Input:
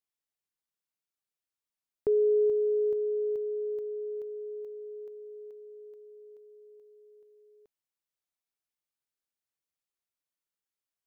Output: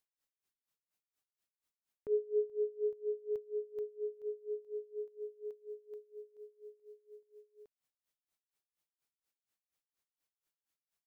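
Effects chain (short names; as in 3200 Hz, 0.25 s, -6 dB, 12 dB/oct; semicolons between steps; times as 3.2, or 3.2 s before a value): dynamic EQ 340 Hz, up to -6 dB, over -38 dBFS, Q 1.2; in parallel at +3 dB: compressor, threshold -41 dBFS, peak gain reduction 12.5 dB; on the sum: dB-linear tremolo 4.2 Hz, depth 24 dB; gain -2 dB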